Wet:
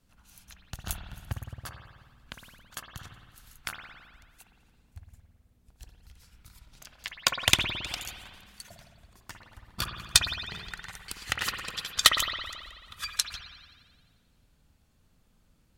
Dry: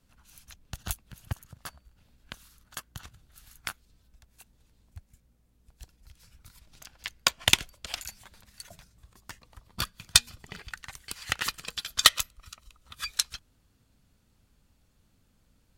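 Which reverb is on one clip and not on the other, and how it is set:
spring reverb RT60 1.6 s, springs 54 ms, chirp 35 ms, DRR 3 dB
level −1 dB

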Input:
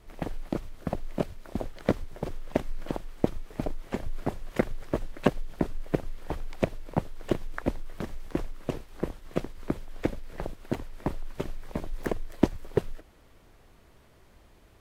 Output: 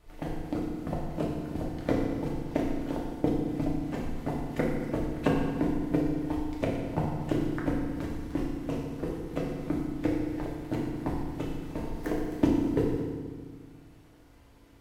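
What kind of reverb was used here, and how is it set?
feedback delay network reverb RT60 1.6 s, low-frequency decay 1.55×, high-frequency decay 0.85×, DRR −3.5 dB
level −5.5 dB

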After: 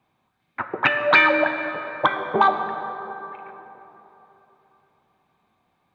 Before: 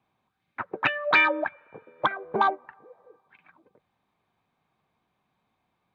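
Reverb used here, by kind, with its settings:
dense smooth reverb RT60 3.6 s, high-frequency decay 0.55×, DRR 6 dB
level +5 dB

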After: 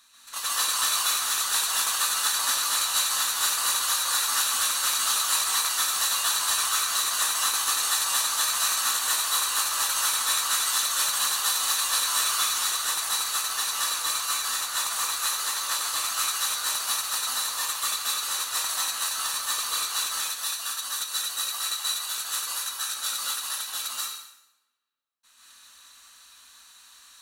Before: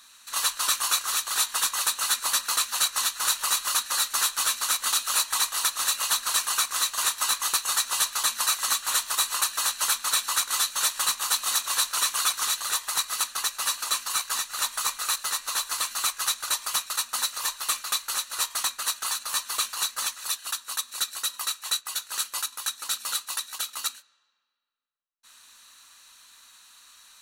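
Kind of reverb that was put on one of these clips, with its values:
dense smooth reverb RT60 0.81 s, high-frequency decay 0.95×, pre-delay 120 ms, DRR −6 dB
level −6 dB

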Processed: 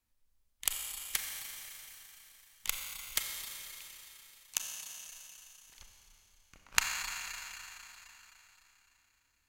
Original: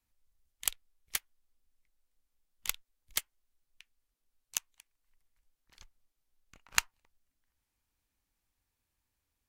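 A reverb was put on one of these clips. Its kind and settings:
four-comb reverb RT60 3.6 s, combs from 29 ms, DRR 1.5 dB

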